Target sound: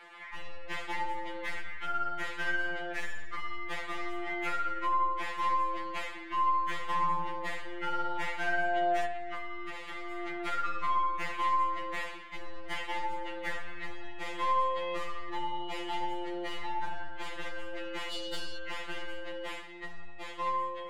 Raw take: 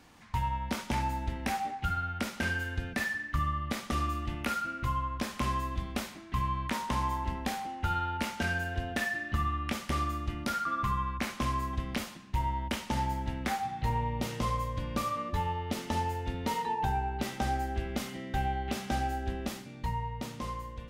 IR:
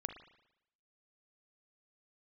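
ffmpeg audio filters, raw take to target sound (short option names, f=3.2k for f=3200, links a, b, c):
-filter_complex "[0:a]highpass=f=350:w=0.5412,highpass=f=350:w=1.3066,equalizer=f=400:t=q:w=4:g=-8,equalizer=f=590:t=q:w=4:g=-3,equalizer=f=2k:t=q:w=4:g=9,equalizer=f=3.2k:t=q:w=4:g=4,equalizer=f=6k:t=q:w=4:g=-8,equalizer=f=9.1k:t=q:w=4:g=-6,lowpass=f=9.8k:w=0.5412,lowpass=f=9.8k:w=1.3066,asettb=1/sr,asplit=3[a][b][c];[a]atrim=end=9.054[d];[b]atrim=start=9.05:end=10.28,asetpts=PTS-STARTPTS,afade=t=in:d=0.004:c=qsin,afade=t=out:st=1.226:d=0.004:c=qsin,acompressor=threshold=-38dB:ratio=6[e];[c]atrim=start=10.276[f];[d][e]acrossfade=d=0.004:c1=hsin:c2=qsin[g];[g][f]acrossfade=d=0.004:c1=qsin:c2=hsin,asoftclip=type=tanh:threshold=-30dB,alimiter=level_in=11.5dB:limit=-24dB:level=0:latency=1:release=376,volume=-11.5dB,asplit=3[h][i][j];[h]afade=t=out:st=18.1:d=0.02[k];[i]highshelf=f=3k:t=q:w=3:g=13,afade=t=in:st=18.1:d=0.02,afade=t=out:st=18.56:d=0.02[l];[j]afade=t=in:st=18.56:d=0.02[m];[k][l][m]amix=inputs=3:normalize=0,aeval=exprs='0.0631*(cos(1*acos(clip(val(0)/0.0631,-1,1)))-cos(1*PI/2))+0.0158*(cos(4*acos(clip(val(0)/0.0631,-1,1)))-cos(4*PI/2))+0.00631*(cos(5*acos(clip(val(0)/0.0631,-1,1)))-cos(5*PI/2))':c=same,asplit=2[n][o];[1:a]atrim=start_sample=2205,lowpass=3k[p];[o][p]afir=irnorm=-1:irlink=0,volume=4dB[q];[n][q]amix=inputs=2:normalize=0,afftfilt=real='re*2.83*eq(mod(b,8),0)':imag='im*2.83*eq(mod(b,8),0)':win_size=2048:overlap=0.75"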